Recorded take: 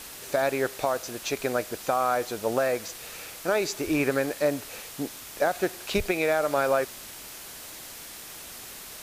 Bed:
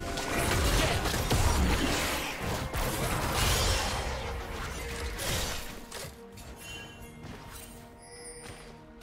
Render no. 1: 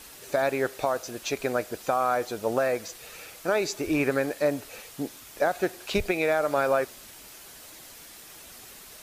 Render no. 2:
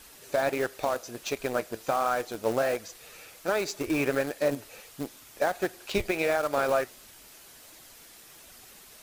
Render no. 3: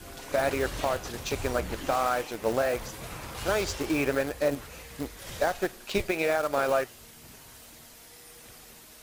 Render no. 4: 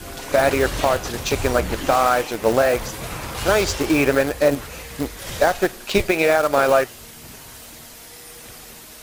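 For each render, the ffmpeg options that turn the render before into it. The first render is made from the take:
-af "afftdn=nr=6:nf=-43"
-filter_complex "[0:a]flanger=delay=0.6:depth=8.5:regen=74:speed=1.4:shape=sinusoidal,asplit=2[a][b];[b]acrusher=bits=4:mix=0:aa=0.000001,volume=-9.5dB[c];[a][c]amix=inputs=2:normalize=0"
-filter_complex "[1:a]volume=-10dB[a];[0:a][a]amix=inputs=2:normalize=0"
-af "volume=9.5dB"

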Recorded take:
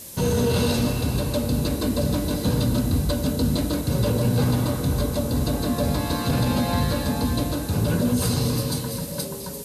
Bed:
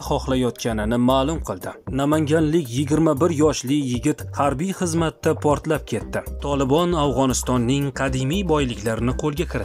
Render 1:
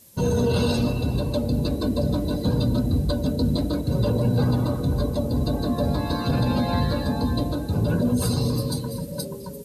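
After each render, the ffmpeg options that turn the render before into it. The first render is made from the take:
-af "afftdn=nr=13:nf=-33"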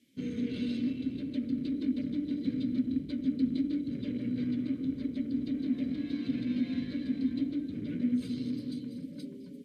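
-filter_complex "[0:a]asplit=2[a][b];[b]aeval=exprs='0.0376*(abs(mod(val(0)/0.0376+3,4)-2)-1)':c=same,volume=-6.5dB[c];[a][c]amix=inputs=2:normalize=0,asplit=3[d][e][f];[d]bandpass=f=270:t=q:w=8,volume=0dB[g];[e]bandpass=f=2.29k:t=q:w=8,volume=-6dB[h];[f]bandpass=f=3.01k:t=q:w=8,volume=-9dB[i];[g][h][i]amix=inputs=3:normalize=0"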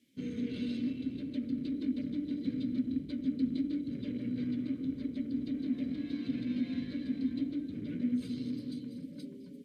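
-af "volume=-2.5dB"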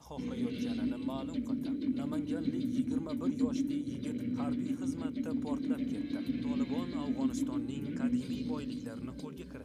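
-filter_complex "[1:a]volume=-24.5dB[a];[0:a][a]amix=inputs=2:normalize=0"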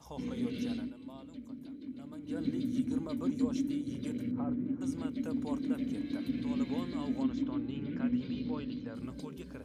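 -filter_complex "[0:a]asettb=1/sr,asplit=3[a][b][c];[a]atrim=end=4.314[d];[b]atrim=start=4.31:end=4.81,asetpts=PTS-STARTPTS,afade=t=in:d=0.004:c=qsin,afade=t=out:st=0.496:d=0.004:c=qsin,lowpass=1.2k[e];[c]atrim=start=4.806[f];[d][e]acrossfade=d=0.004:c1=hsin:c2=qsin[g];[g][f]acrossfade=d=0.004:c1=qsin:c2=hsin,asettb=1/sr,asplit=3[h][i][j];[h]atrim=end=7.234[k];[i]atrim=start=7.23:end=8.95,asetpts=PTS-STARTPTS,afade=t=in:d=0.004:c=qsin,afade=t=out:st=1.716:d=0.004:c=qsin,lowpass=f=4.2k:w=0.5412,lowpass=f=4.2k:w=1.3066[l];[j]atrim=start=8.946[m];[k][l]acrossfade=d=0.004:c1=hsin:c2=qsin[n];[n][m]acrossfade=d=0.004:c1=qsin:c2=hsin,asplit=3[o][p][q];[o]atrim=end=0.9,asetpts=PTS-STARTPTS,afade=t=out:st=0.73:d=0.17:silence=0.298538[r];[p]atrim=start=0.9:end=2.22,asetpts=PTS-STARTPTS,volume=-10.5dB[s];[q]atrim=start=2.22,asetpts=PTS-STARTPTS,afade=t=in:d=0.17:silence=0.298538[t];[r][s][t]concat=n=3:v=0:a=1"

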